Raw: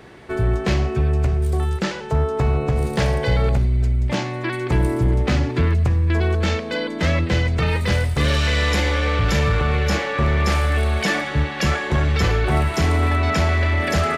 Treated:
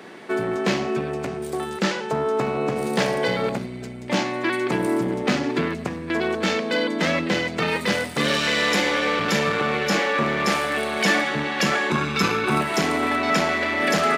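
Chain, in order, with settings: 11.9–12.61 comb 0.8 ms, depth 62%; in parallel at -6.5 dB: hard clip -22.5 dBFS, distortion -7 dB; on the sum: Chebyshev high-pass 200 Hz, order 3

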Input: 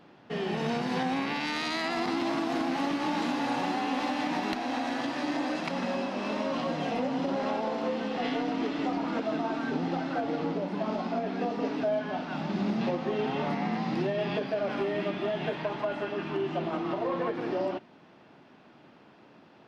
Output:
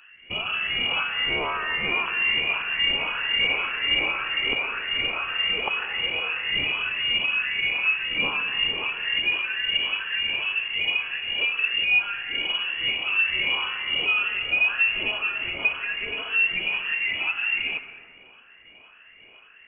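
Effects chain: moving spectral ripple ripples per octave 0.55, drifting -1.9 Hz, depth 22 dB; HPF 180 Hz 12 dB/oct; inverted band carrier 3100 Hz; plate-style reverb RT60 1.8 s, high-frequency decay 0.35×, pre-delay 0.12 s, DRR 10.5 dB

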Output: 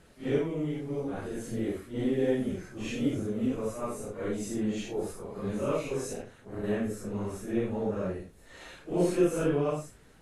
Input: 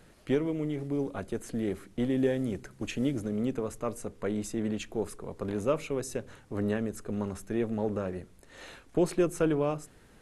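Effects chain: phase scrambler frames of 0.2 s; 6.13–6.64 AM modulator 230 Hz, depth 70%

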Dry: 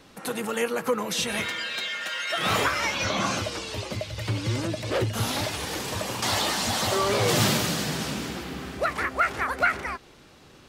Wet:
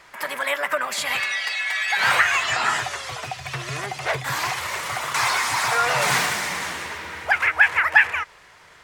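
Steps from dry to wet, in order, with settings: varispeed +21%; ten-band EQ 250 Hz -11 dB, 1000 Hz +9 dB, 2000 Hz +12 dB, 8000 Hz +4 dB; gain -3.5 dB

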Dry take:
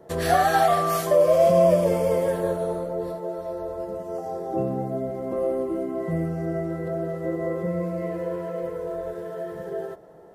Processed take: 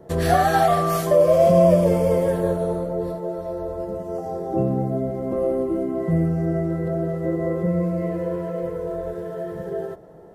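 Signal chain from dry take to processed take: low shelf 310 Hz +9 dB

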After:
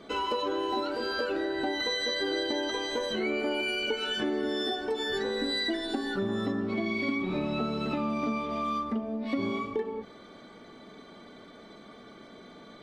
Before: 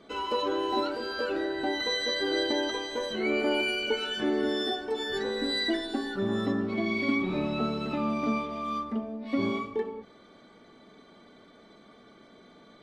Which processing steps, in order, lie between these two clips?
compressor 4:1, threshold -33 dBFS, peak gain reduction 10 dB; gain +5 dB

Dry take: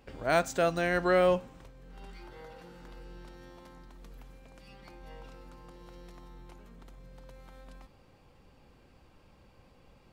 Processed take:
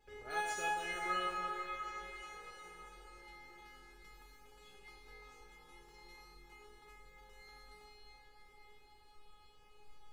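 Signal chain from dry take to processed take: reverse delay 0.106 s, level -4 dB; notch 430 Hz, Q 12; in parallel at +3 dB: compressor, threshold -43 dBFS, peak gain reduction 22 dB; on the sum: resonator 420 Hz, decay 0.54 s, mix 100%; delay with a stepping band-pass 0.344 s, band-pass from 990 Hz, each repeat 0.7 oct, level -5.5 dB; on a send at -5 dB: reverb RT60 5.2 s, pre-delay 4 ms; on the sum: gain +8 dB

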